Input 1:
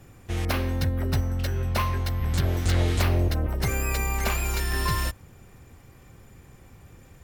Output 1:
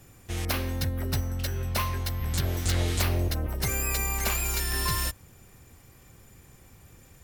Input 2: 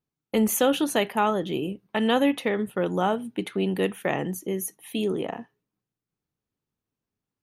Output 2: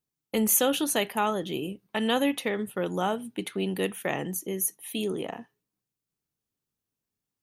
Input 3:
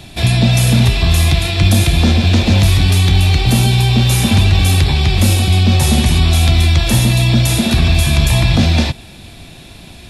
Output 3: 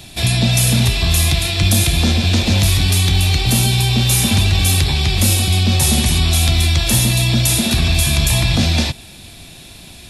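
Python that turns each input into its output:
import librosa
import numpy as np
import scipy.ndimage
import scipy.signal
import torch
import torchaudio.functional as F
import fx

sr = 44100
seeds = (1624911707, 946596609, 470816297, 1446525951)

y = fx.high_shelf(x, sr, hz=3900.0, db=10.0)
y = y * 10.0 ** (-4.0 / 20.0)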